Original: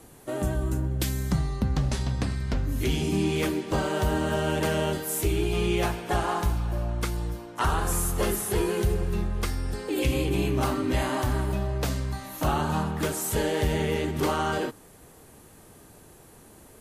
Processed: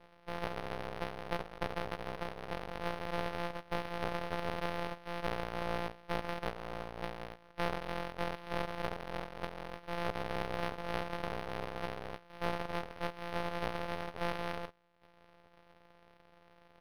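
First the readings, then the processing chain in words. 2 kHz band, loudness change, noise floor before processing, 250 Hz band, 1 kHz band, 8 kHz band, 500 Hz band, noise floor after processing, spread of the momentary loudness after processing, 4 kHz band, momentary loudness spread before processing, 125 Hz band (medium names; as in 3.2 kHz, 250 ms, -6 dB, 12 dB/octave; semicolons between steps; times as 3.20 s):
-7.5 dB, -12.0 dB, -52 dBFS, -15.0 dB, -7.5 dB, -25.5 dB, -10.5 dB, -64 dBFS, 6 LU, -10.5 dB, 4 LU, -18.0 dB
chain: sorted samples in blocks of 256 samples; reverb removal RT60 0.71 s; FFT band-pass 400–5700 Hz; half-wave rectifier; decimation joined by straight lines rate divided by 6×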